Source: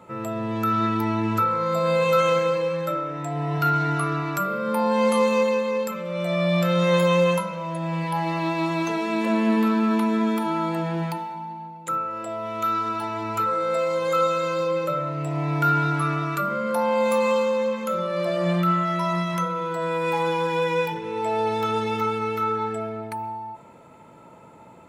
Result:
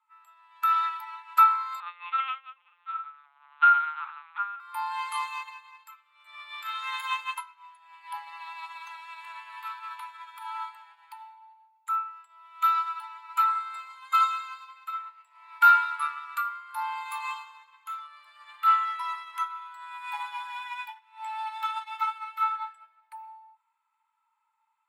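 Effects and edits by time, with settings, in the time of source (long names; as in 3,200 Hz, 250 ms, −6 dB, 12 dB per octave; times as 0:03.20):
0:01.80–0:04.60: linear-prediction vocoder at 8 kHz pitch kept
0:06.46–0:07.12: double-tracking delay 38 ms −10 dB
whole clip: Chebyshev high-pass filter 880 Hz, order 6; parametric band 5,900 Hz −11 dB 0.41 octaves; expander for the loud parts 2.5 to 1, over −40 dBFS; level +6.5 dB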